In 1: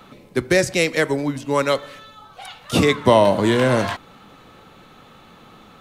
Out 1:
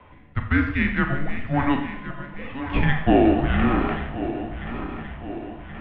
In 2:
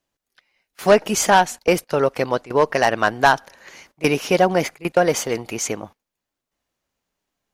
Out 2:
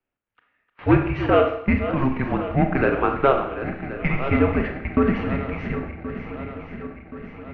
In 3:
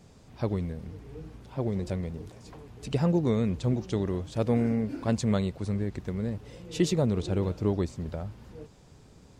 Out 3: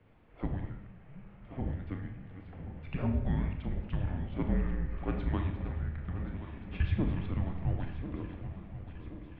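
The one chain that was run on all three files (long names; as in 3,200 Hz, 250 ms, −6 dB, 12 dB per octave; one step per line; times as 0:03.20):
feedback delay that plays each chunk backwards 538 ms, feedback 73%, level −11 dB
single-sideband voice off tune −280 Hz 190–3,000 Hz
four-comb reverb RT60 0.69 s, combs from 27 ms, DRR 4.5 dB
level −3.5 dB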